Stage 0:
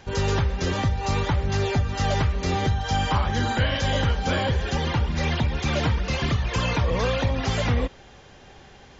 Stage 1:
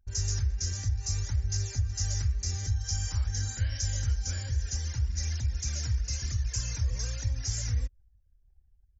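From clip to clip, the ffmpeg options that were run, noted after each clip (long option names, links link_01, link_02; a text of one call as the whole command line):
ffmpeg -i in.wav -af "anlmdn=1,firequalizer=gain_entry='entry(100,0);entry(150,-18);entry(330,-21);entry(720,-24);entry(1100,-24);entry(1600,-12);entry(3300,-18);entry(5500,10)':delay=0.05:min_phase=1,volume=-4dB" out.wav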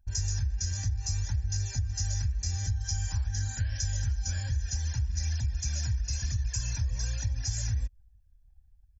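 ffmpeg -i in.wav -af "acompressor=threshold=-29dB:ratio=6,aecho=1:1:1.2:0.56" out.wav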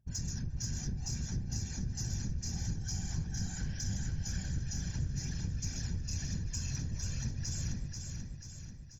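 ffmpeg -i in.wav -af "afftfilt=real='hypot(re,im)*cos(2*PI*random(0))':imag='hypot(re,im)*sin(2*PI*random(1))':win_size=512:overlap=0.75,asoftclip=type=tanh:threshold=-27.5dB,aecho=1:1:487|974|1461|1948|2435|2922|3409:0.562|0.304|0.164|0.0885|0.0478|0.0258|0.0139" out.wav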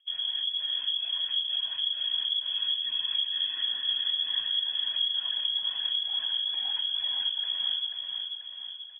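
ffmpeg -i in.wav -af "lowpass=frequency=2900:width_type=q:width=0.5098,lowpass=frequency=2900:width_type=q:width=0.6013,lowpass=frequency=2900:width_type=q:width=0.9,lowpass=frequency=2900:width_type=q:width=2.563,afreqshift=-3400,volume=6dB" out.wav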